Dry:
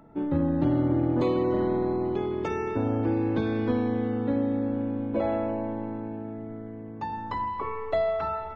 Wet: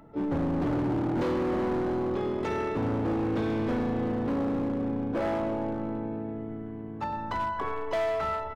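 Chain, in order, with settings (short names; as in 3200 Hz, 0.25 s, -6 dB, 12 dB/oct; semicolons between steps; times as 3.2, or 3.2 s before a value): harmoniser -7 st -12 dB, +7 st -13 dB; overloaded stage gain 25 dB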